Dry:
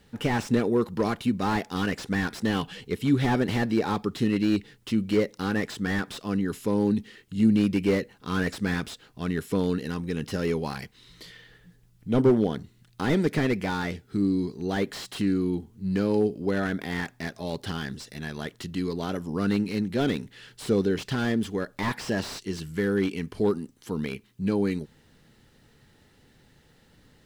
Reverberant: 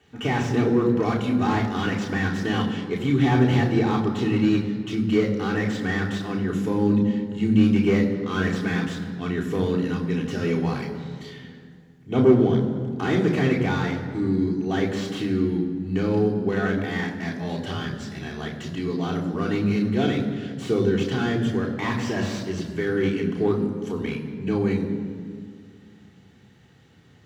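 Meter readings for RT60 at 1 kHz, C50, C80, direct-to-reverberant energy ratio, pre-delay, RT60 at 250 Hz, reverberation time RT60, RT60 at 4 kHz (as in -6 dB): 2.0 s, 7.5 dB, 8.5 dB, -2.0 dB, 3 ms, 2.8 s, 2.1 s, 1.4 s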